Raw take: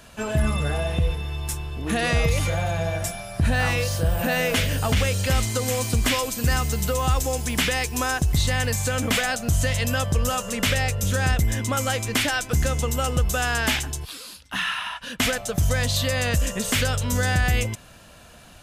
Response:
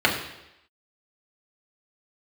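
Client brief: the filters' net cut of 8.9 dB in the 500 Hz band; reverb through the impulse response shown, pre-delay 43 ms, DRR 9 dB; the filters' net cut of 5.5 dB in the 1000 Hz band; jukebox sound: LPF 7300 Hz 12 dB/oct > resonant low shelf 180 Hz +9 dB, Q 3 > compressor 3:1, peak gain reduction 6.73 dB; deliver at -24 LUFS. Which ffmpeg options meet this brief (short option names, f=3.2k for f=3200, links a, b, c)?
-filter_complex "[0:a]equalizer=f=500:t=o:g=-7.5,equalizer=f=1k:t=o:g=-4.5,asplit=2[a][b];[1:a]atrim=start_sample=2205,adelay=43[c];[b][c]afir=irnorm=-1:irlink=0,volume=-27.5dB[d];[a][d]amix=inputs=2:normalize=0,lowpass=7.3k,lowshelf=f=180:t=q:w=3:g=9,acompressor=threshold=-13dB:ratio=3,volume=-5dB"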